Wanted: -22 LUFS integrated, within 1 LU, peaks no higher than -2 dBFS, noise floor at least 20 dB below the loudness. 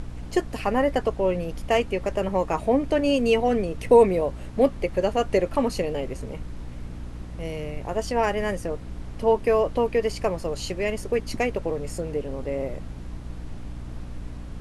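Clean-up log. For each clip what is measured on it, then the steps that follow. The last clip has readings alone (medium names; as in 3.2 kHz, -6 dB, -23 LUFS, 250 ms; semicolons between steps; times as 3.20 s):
hum 60 Hz; highest harmonic 300 Hz; hum level -36 dBFS; noise floor -37 dBFS; noise floor target -45 dBFS; loudness -24.5 LUFS; peak level -5.5 dBFS; loudness target -22.0 LUFS
-> hum notches 60/120/180/240/300 Hz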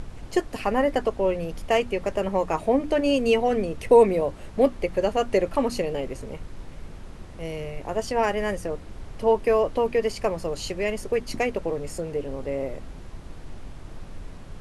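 hum not found; noise floor -41 dBFS; noise floor target -45 dBFS
-> noise print and reduce 6 dB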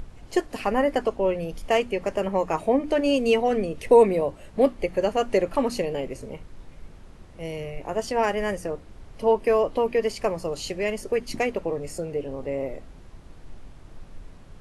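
noise floor -47 dBFS; loudness -25.0 LUFS; peak level -6.0 dBFS; loudness target -22.0 LUFS
-> trim +3 dB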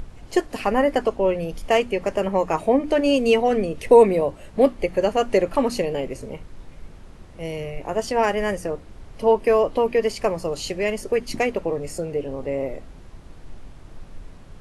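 loudness -22.0 LUFS; peak level -3.0 dBFS; noise floor -44 dBFS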